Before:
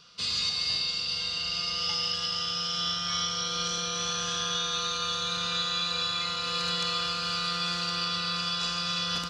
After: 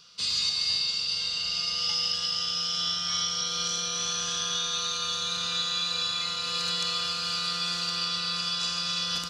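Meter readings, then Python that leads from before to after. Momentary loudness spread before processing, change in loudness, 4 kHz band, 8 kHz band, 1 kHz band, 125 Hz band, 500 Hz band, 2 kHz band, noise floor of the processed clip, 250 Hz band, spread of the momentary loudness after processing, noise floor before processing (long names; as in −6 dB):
2 LU, +1.0 dB, +1.5 dB, +3.5 dB, −3.0 dB, −4.0 dB, −4.0 dB, −1.5 dB, −32 dBFS, can't be measured, 3 LU, −32 dBFS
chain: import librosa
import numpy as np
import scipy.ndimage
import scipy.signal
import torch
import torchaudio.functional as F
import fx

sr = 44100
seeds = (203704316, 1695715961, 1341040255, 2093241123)

y = fx.high_shelf(x, sr, hz=3900.0, db=10.5)
y = F.gain(torch.from_numpy(y), -4.0).numpy()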